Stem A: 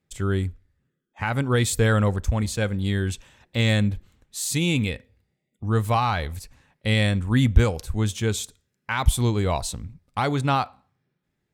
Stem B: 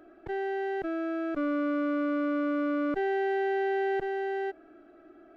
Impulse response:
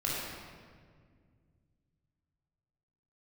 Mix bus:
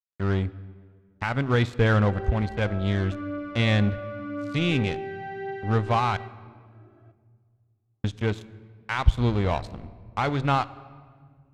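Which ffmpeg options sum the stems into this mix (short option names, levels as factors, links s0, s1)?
-filter_complex "[0:a]agate=range=0.0224:threshold=0.01:ratio=3:detection=peak,lowpass=3800,aeval=exprs='sgn(val(0))*max(abs(val(0))-0.0224,0)':c=same,volume=1,asplit=3[s0][s1][s2];[s0]atrim=end=6.17,asetpts=PTS-STARTPTS,afade=t=out:st=6.166:d=0.004:c=hsin[s3];[s1]atrim=start=6.17:end=8.04,asetpts=PTS-STARTPTS,volume=0[s4];[s2]atrim=start=8.04,asetpts=PTS-STARTPTS,afade=t=in:d=0.004:c=hsin[s5];[s3][s4][s5]concat=n=3:v=0:a=1,asplit=2[s6][s7];[s7]volume=0.0668[s8];[1:a]flanger=delay=18.5:depth=4.3:speed=0.47,adelay=1750,volume=0.75,asplit=2[s9][s10];[s10]volume=0.0944[s11];[2:a]atrim=start_sample=2205[s12];[s8][s11]amix=inputs=2:normalize=0[s13];[s13][s12]afir=irnorm=-1:irlink=0[s14];[s6][s9][s14]amix=inputs=3:normalize=0,lowpass=6900"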